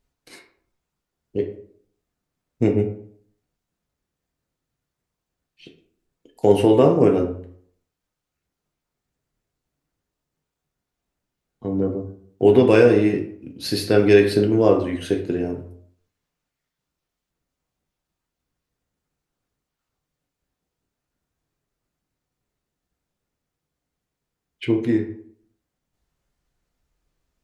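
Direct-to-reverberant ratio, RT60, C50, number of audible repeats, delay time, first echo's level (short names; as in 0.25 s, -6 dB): 2.5 dB, 0.60 s, 9.5 dB, none, none, none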